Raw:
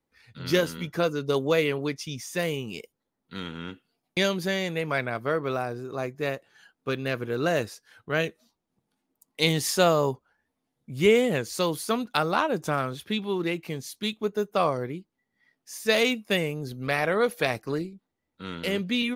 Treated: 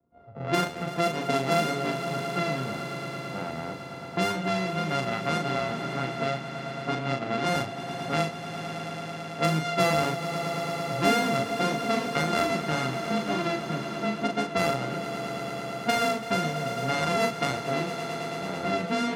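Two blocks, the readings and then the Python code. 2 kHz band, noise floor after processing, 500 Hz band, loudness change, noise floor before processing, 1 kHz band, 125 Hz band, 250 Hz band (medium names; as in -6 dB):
-0.5 dB, -38 dBFS, -2.5 dB, -1.5 dB, -82 dBFS, +4.0 dB, +1.0 dB, 0.0 dB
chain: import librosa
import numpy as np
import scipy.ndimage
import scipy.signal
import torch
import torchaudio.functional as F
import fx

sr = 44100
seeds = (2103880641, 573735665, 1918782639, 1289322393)

y = np.r_[np.sort(x[:len(x) // 64 * 64].reshape(-1, 64), axis=1).ravel(), x[len(x) // 64 * 64:]]
y = fx.env_lowpass(y, sr, base_hz=700.0, full_db=-19.5)
y = scipy.signal.sosfilt(scipy.signal.butter(2, 70.0, 'highpass', fs=sr, output='sos'), y)
y = fx.high_shelf(y, sr, hz=7300.0, db=-11.5)
y = fx.vibrato(y, sr, rate_hz=1.9, depth_cents=33.0)
y = fx.doubler(y, sr, ms=38.0, db=-5.0)
y = fx.echo_swell(y, sr, ms=111, loudest=5, wet_db=-16.0)
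y = fx.band_squash(y, sr, depth_pct=40)
y = y * 10.0 ** (-1.5 / 20.0)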